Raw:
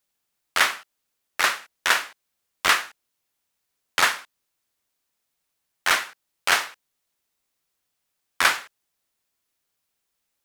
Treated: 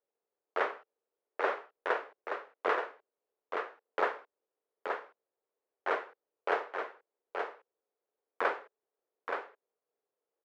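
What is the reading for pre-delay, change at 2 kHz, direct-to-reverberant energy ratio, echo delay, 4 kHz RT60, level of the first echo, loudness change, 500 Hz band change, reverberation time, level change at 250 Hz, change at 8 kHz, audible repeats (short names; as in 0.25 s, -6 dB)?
none, -14.0 dB, none, 0.875 s, none, -5.5 dB, -13.5 dB, +3.5 dB, none, -3.0 dB, under -35 dB, 1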